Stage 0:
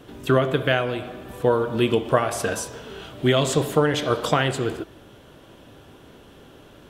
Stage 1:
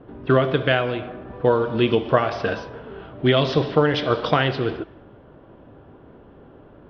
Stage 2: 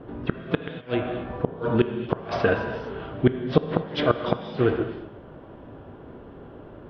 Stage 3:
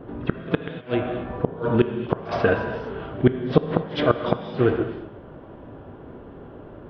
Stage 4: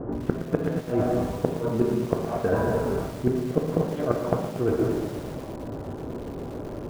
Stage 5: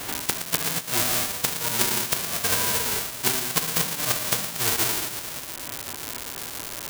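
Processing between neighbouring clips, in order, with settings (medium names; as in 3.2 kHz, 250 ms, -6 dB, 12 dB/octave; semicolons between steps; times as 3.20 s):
steep low-pass 5.6 kHz 96 dB/octave; level-controlled noise filter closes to 1.1 kHz, open at -15 dBFS; trim +1.5 dB
inverted gate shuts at -8 dBFS, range -33 dB; gated-style reverb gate 270 ms flat, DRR 8.5 dB; low-pass that closes with the level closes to 2.4 kHz, closed at -24 dBFS; trim +3 dB
treble shelf 3.6 kHz -5.5 dB; reverse echo 62 ms -21.5 dB; trim +2 dB
low-pass 1 kHz 12 dB/octave; reverse; compression 20:1, threshold -27 dBFS, peak gain reduction 17.5 dB; reverse; bit-crushed delay 117 ms, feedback 80%, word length 7-bit, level -11.5 dB; trim +7 dB
formants flattened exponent 0.1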